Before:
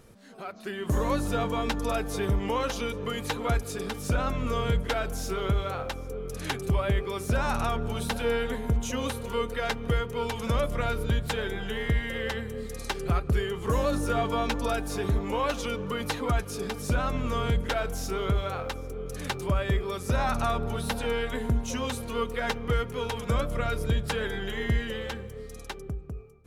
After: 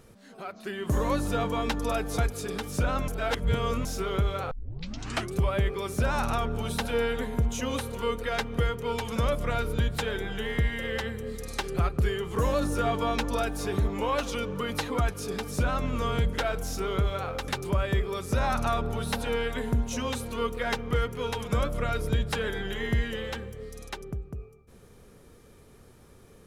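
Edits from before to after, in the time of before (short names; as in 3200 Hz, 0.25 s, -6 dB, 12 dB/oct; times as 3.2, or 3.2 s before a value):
2.18–3.49 cut
4.39–5.16 reverse
5.82 tape start 0.83 s
18.79–19.25 cut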